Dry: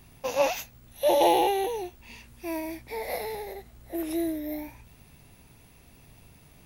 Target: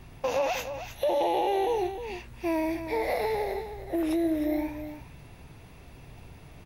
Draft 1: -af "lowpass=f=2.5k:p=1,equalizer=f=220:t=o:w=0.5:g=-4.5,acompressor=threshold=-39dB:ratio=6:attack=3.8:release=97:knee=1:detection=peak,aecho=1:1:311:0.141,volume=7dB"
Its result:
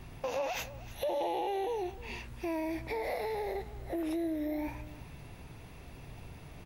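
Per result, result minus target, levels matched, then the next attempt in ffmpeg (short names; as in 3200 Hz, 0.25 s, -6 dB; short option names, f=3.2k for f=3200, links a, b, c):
compressor: peak gain reduction +7 dB; echo-to-direct -7 dB
-af "lowpass=f=2.5k:p=1,equalizer=f=220:t=o:w=0.5:g=-4.5,acompressor=threshold=-30.5dB:ratio=6:attack=3.8:release=97:knee=1:detection=peak,aecho=1:1:311:0.141,volume=7dB"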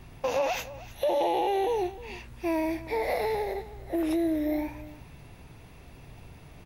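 echo-to-direct -7 dB
-af "lowpass=f=2.5k:p=1,equalizer=f=220:t=o:w=0.5:g=-4.5,acompressor=threshold=-30.5dB:ratio=6:attack=3.8:release=97:knee=1:detection=peak,aecho=1:1:311:0.316,volume=7dB"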